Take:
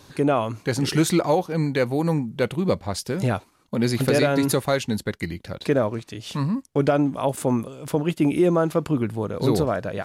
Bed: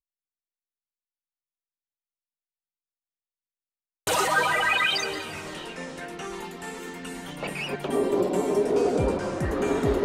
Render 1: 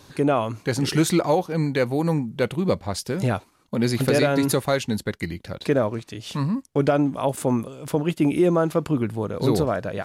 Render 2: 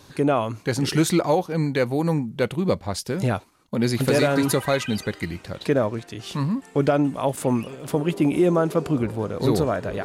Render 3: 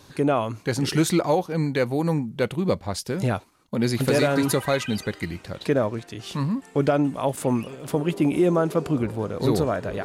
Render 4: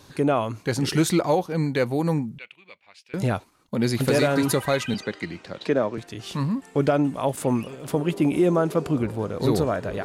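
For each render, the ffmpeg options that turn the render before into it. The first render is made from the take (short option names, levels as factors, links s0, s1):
-af anull
-filter_complex "[1:a]volume=0.224[s0];[0:a][s0]amix=inputs=2:normalize=0"
-af "volume=0.891"
-filter_complex "[0:a]asettb=1/sr,asplit=3[s0][s1][s2];[s0]atrim=end=2.384[s3];[s1]atrim=start=2.38:end=3.14,asetpts=PTS-STARTPTS,afade=t=in:d=0.004:c=qsin,afade=t=out:st=0.756:d=0.004:c=qsin,bandpass=f=2500:t=q:w=5.8[s4];[s2]atrim=start=3.136[s5];[s3][s4]acrossfade=d=0.004:c1=hsin:c2=qsin[s6];[s6][s5]acrossfade=d=0.004:c1=qsin:c2=hsin,asettb=1/sr,asplit=3[s7][s8][s9];[s7]atrim=end=4.944[s10];[s8]atrim=start=4.94:end=5.98,asetpts=PTS-STARTPTS,afade=t=in:d=0.004:c=qsin,afade=t=out:st=1.036:d=0.004:c=qsin,acrossover=split=160 7600:gain=0.224 1 0.112[s11][s12][s13];[s11][s12][s13]amix=inputs=3:normalize=0[s14];[s9]atrim=start=5.976[s15];[s10][s14]acrossfade=d=0.004:c1=hsin:c2=qsin[s16];[s16][s15]acrossfade=d=0.004:c1=qsin:c2=hsin"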